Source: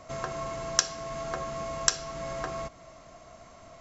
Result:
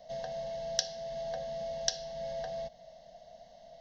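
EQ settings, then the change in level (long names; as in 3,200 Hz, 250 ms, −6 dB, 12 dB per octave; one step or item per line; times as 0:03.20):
low-shelf EQ 130 Hz −6.5 dB
phaser with its sweep stopped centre 360 Hz, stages 6
phaser with its sweep stopped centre 1,600 Hz, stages 8
0.0 dB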